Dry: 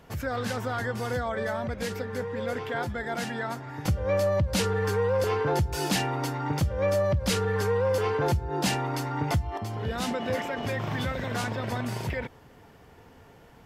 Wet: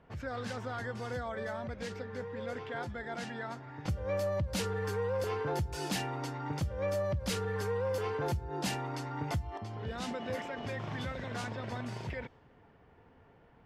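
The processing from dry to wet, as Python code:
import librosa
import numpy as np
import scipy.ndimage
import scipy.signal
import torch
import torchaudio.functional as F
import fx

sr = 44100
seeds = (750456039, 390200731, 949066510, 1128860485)

y = fx.env_lowpass(x, sr, base_hz=2300.0, full_db=-22.5)
y = F.gain(torch.from_numpy(y), -8.0).numpy()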